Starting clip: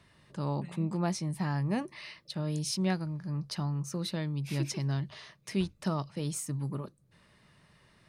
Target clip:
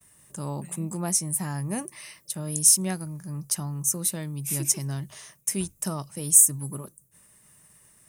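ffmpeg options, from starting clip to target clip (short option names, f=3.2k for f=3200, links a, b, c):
-af "agate=range=-33dB:threshold=-59dB:ratio=3:detection=peak,aexciter=amount=13.5:drive=7.1:freq=6.6k"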